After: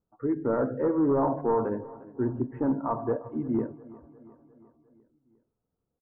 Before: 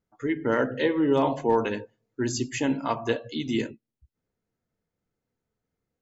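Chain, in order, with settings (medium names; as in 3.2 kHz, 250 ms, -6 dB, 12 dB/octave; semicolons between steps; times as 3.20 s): hard clipper -19.5 dBFS, distortion -13 dB; steep low-pass 1.3 kHz 36 dB/octave; on a send: feedback delay 353 ms, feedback 58%, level -20 dB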